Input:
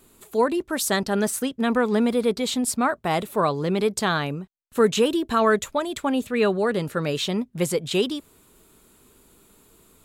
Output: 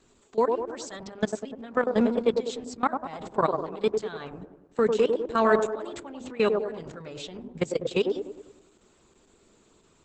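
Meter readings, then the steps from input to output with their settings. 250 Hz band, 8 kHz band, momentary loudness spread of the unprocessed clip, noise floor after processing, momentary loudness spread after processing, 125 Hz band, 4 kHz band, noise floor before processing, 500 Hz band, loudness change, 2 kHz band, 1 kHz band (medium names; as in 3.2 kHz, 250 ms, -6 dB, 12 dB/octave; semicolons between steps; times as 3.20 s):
-7.0 dB, -15.0 dB, 6 LU, -62 dBFS, 16 LU, -9.5 dB, -11.0 dB, -58 dBFS, -2.5 dB, -4.0 dB, -7.0 dB, -4.0 dB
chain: hum notches 50/100/150/200/250 Hz; level held to a coarse grid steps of 20 dB; on a send: feedback echo behind a band-pass 99 ms, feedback 49%, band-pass 500 Hz, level -3 dB; on the sum: Opus 10 kbps 48 kHz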